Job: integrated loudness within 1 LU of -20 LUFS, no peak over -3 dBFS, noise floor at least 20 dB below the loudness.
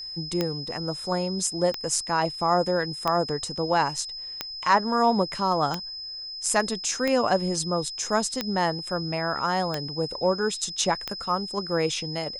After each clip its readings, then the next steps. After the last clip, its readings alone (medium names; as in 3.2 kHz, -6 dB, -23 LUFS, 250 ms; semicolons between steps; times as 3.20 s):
clicks found 9; steady tone 5.1 kHz; tone level -34 dBFS; loudness -26.0 LUFS; peak level -7.0 dBFS; loudness target -20.0 LUFS
-> de-click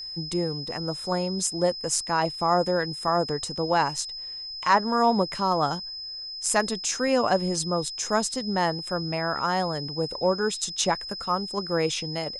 clicks found 0; steady tone 5.1 kHz; tone level -34 dBFS
-> band-stop 5.1 kHz, Q 30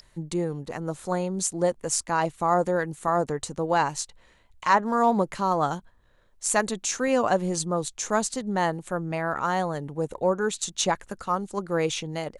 steady tone not found; loudness -26.5 LUFS; peak level -7.0 dBFS; loudness target -20.0 LUFS
-> trim +6.5 dB; peak limiter -3 dBFS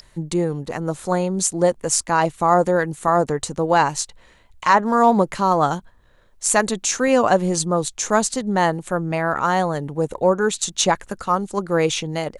loudness -20.0 LUFS; peak level -3.0 dBFS; noise floor -53 dBFS